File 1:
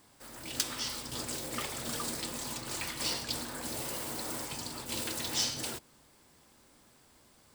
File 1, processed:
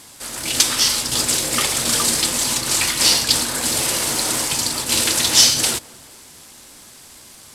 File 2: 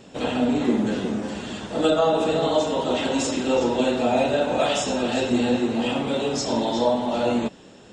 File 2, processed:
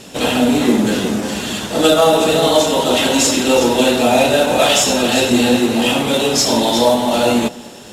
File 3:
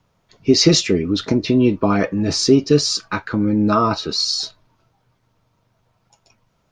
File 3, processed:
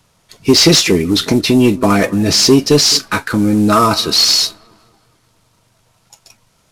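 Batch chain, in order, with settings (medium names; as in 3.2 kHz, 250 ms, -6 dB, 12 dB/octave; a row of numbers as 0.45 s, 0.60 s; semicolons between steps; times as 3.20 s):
CVSD coder 64 kbps; pre-emphasis filter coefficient 0.8; feedback echo behind a low-pass 212 ms, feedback 47%, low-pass 1.4 kHz, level -21 dB; saturation -21 dBFS; treble shelf 7.2 kHz -9.5 dB; peak normalisation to -1.5 dBFS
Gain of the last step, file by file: +27.0 dB, +22.0 dB, +20.0 dB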